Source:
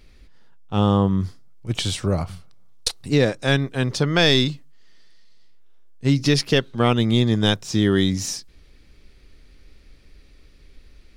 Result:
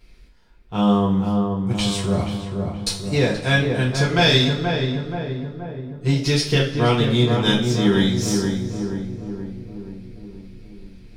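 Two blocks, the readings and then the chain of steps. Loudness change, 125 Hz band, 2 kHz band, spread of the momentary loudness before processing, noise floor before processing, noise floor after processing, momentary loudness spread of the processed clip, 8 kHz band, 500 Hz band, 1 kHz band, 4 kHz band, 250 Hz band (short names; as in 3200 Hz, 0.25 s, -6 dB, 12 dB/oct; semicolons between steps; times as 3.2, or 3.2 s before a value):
+0.5 dB, +2.0 dB, +2.0 dB, 11 LU, -51 dBFS, -47 dBFS, 15 LU, +0.5 dB, +1.5 dB, +2.5 dB, +1.0 dB, +2.0 dB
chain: on a send: darkening echo 0.477 s, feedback 61%, low-pass 1300 Hz, level -4 dB; on the sum: two-slope reverb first 0.33 s, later 1.9 s, from -19 dB, DRR -6 dB; gain -6 dB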